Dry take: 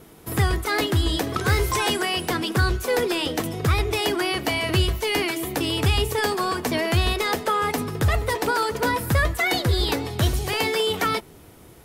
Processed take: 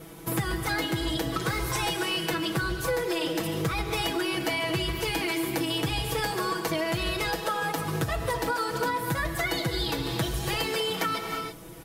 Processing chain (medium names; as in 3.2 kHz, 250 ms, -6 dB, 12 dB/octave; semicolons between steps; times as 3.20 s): comb 6.1 ms, depth 94%; gated-style reverb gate 360 ms flat, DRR 7 dB; compression 5:1, threshold -26 dBFS, peak gain reduction 12 dB; 7.30–8.97 s: band-stop 2.1 kHz, Q 13